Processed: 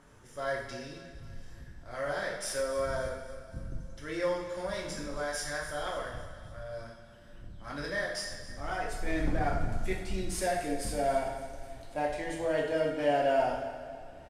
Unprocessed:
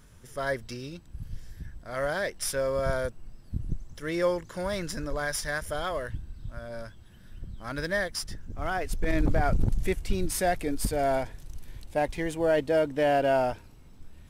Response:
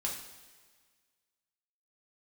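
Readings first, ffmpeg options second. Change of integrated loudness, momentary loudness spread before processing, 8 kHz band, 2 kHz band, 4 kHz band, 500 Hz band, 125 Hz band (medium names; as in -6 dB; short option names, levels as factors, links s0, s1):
-4.0 dB, 18 LU, -4.0 dB, -3.5 dB, -3.0 dB, -3.5 dB, -7.0 dB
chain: -filter_complex "[0:a]lowpass=10000,lowshelf=f=280:g=-4.5,acrossover=split=170|1900[s0][s1][s2];[s1]acompressor=mode=upward:threshold=0.00398:ratio=2.5[s3];[s0][s3][s2]amix=inputs=3:normalize=0,aecho=1:1:273|546|819|1092|1365:0.141|0.0749|0.0397|0.021|0.0111[s4];[1:a]atrim=start_sample=2205,asetrate=36603,aresample=44100[s5];[s4][s5]afir=irnorm=-1:irlink=0,volume=0.447"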